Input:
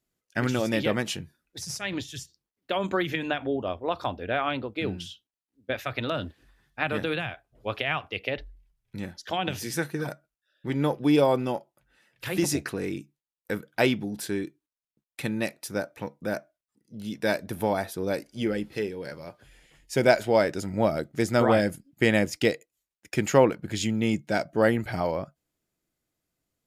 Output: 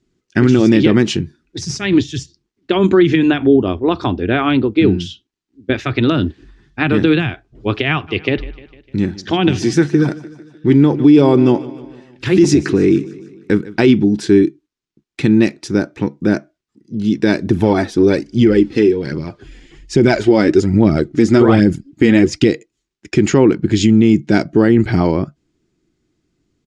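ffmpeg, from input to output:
ffmpeg -i in.wav -filter_complex "[0:a]asplit=3[link_01][link_02][link_03];[link_01]afade=type=out:start_time=8.07:duration=0.02[link_04];[link_02]aecho=1:1:151|302|453|604|755:0.112|0.0617|0.0339|0.0187|0.0103,afade=type=in:start_time=8.07:duration=0.02,afade=type=out:start_time=13.91:duration=0.02[link_05];[link_03]afade=type=in:start_time=13.91:duration=0.02[link_06];[link_04][link_05][link_06]amix=inputs=3:normalize=0,asplit=3[link_07][link_08][link_09];[link_07]afade=type=out:start_time=17.45:duration=0.02[link_10];[link_08]aphaser=in_gain=1:out_gain=1:delay=4.2:decay=0.48:speed=1.2:type=triangular,afade=type=in:start_time=17.45:duration=0.02,afade=type=out:start_time=22.46:duration=0.02[link_11];[link_09]afade=type=in:start_time=22.46:duration=0.02[link_12];[link_10][link_11][link_12]amix=inputs=3:normalize=0,lowpass=frequency=6900:width=0.5412,lowpass=frequency=6900:width=1.3066,lowshelf=frequency=450:width_type=q:width=3:gain=6.5,alimiter=level_in=11.5dB:limit=-1dB:release=50:level=0:latency=1,volume=-1dB" out.wav

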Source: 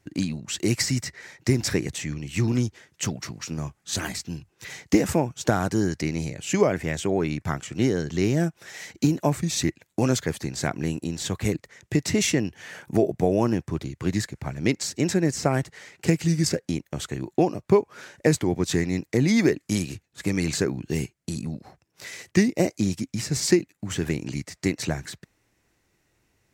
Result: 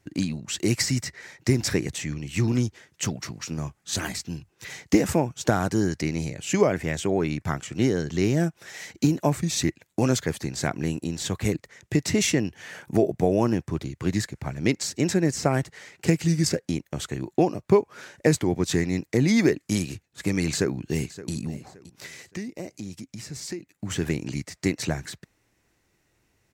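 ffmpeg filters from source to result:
ffmpeg -i in.wav -filter_complex "[0:a]asplit=2[link_01][link_02];[link_02]afade=type=in:start_time=20.44:duration=0.01,afade=type=out:start_time=21.32:duration=0.01,aecho=0:1:570|1140|1710:0.158489|0.0475468|0.014264[link_03];[link_01][link_03]amix=inputs=2:normalize=0,asettb=1/sr,asplit=3[link_04][link_05][link_06];[link_04]atrim=end=22.064[link_07];[link_05]atrim=start=22.06:end=23.75,asetpts=PTS-STARTPTS,afade=type=in:duration=0.004:curve=qsin,afade=type=out:start_time=1.686:duration=0.004:curve=qsin,acompressor=threshold=-42dB:ratio=2:attack=3.2:release=140:knee=1:detection=peak[link_08];[link_06]atrim=start=23.746[link_09];[link_07][link_08]acrossfade=duration=0.004:curve1=hsin:curve2=qsin[link_10];[link_10][link_09]acrossfade=duration=0.004:curve1=qsin:curve2=hsin" out.wav

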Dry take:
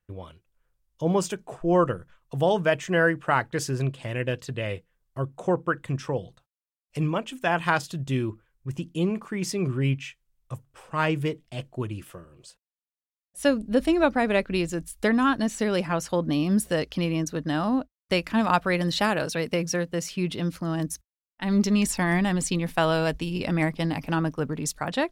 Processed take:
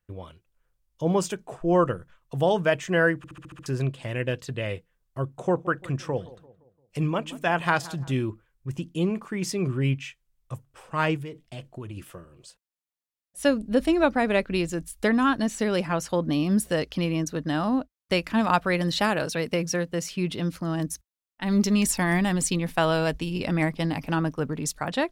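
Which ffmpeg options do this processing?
ffmpeg -i in.wav -filter_complex "[0:a]asettb=1/sr,asplit=3[link_01][link_02][link_03];[link_01]atrim=end=5.214[link_04];[link_02]atrim=start=5.21:end=8.2,asetpts=PTS-STARTPTS,afade=type=in:duration=0.004:curve=qsin,afade=type=out:start_time=2.986:duration=0.004:curve=qsin,asplit=2[link_05][link_06];[link_06]adelay=172,lowpass=frequency=1600:poles=1,volume=-18dB,asplit=2[link_07][link_08];[link_08]adelay=172,lowpass=frequency=1600:poles=1,volume=0.47,asplit=2[link_09][link_10];[link_10]adelay=172,lowpass=frequency=1600:poles=1,volume=0.47,asplit=2[link_11][link_12];[link_12]adelay=172,lowpass=frequency=1600:poles=1,volume=0.47[link_13];[link_05][link_07][link_09][link_11][link_13]amix=inputs=5:normalize=0,atrim=end_sample=131859[link_14];[link_03]atrim=start=8.196[link_15];[link_04][link_14]acrossfade=duration=0.004:curve1=hsin:curve2=qsin[link_16];[link_16][link_15]acrossfade=duration=0.004:curve1=qsin:curve2=hsin,asettb=1/sr,asplit=3[link_17][link_18][link_19];[link_17]atrim=end=11.164[link_20];[link_18]atrim=start=11.16:end=11.97,asetpts=PTS-STARTPTS,afade=type=in:duration=0.004:curve=qsin,afade=type=out:start_time=0.806:duration=0.004:curve=qsin,acompressor=threshold=-33dB:ratio=6:attack=3.2:release=140:knee=1:detection=peak[link_21];[link_19]atrim=start=11.966[link_22];[link_20][link_21]acrossfade=duration=0.004:curve1=hsin:curve2=qsin[link_23];[link_23][link_22]acrossfade=duration=0.004:curve1=qsin:curve2=hsin,asettb=1/sr,asplit=3[link_24][link_25][link_26];[link_24]atrim=end=21.464[link_27];[link_25]atrim=start=21.46:end=22.55,asetpts=PTS-STARTPTS,afade=type=in:duration=0.004:curve=qsin,afade=type=out:start_time=1.086:duration=0.004:curve=qsin,highshelf=frequency=7800:gain=6.5[link_28];[link_26]atrim=start=22.546[link_29];[link_27][link_28]acrossfade=duration=0.004:curve1=hsin:curve2=qsin[link_30];[link_30][link_29]acrossfade=duration=0.004:curve1=qsin:curve2=hsin,asplit=8[link_31][link_32][link_33][link_34][link_35][link_36][link_37][link_38];[link_31]atrim=end=3.242[link_39];[link_32]atrim=start=3.168:end=3.242[link_40];[link_33]atrim=start=3.168:end=3.242[link_41];[link_34]atrim=start=3.168:end=3.242[link_42];[link_35]atrim=start=3.168:end=3.242[link_43];[link_36]atrim=start=3.168:end=3.242[link_44];[link_37]atrim=start=3.168:end=3.242[link_45];[link_38]atrim=start=3.658[link_46];[link_39][link_40]acrossfade=duration=0.004:curve1=hsin:curve2=hsin[link_47];[link_47][link_41]acrossfade=duration=0.004:curve1=hsin:curve2=hsin[link_48];[link_48][link_42]acrossfade=duration=0.004:curve1=hsin:curve2=hsin[link_49];[link_49][link_43]acrossfade=duration=0.004:curve1=hsin:curve2=hsin[link_50];[link_50][link_44]acrossfade=duration=0.004:curve1=hsin:curve2=hsin[link_51];[link_51][link_45]acrossfade=duration=0.004:curve1=hsin:curve2=hsin[link_52];[link_52][link_46]acrossfade=duration=0.004:curve1=hsin:curve2=hsin" out.wav

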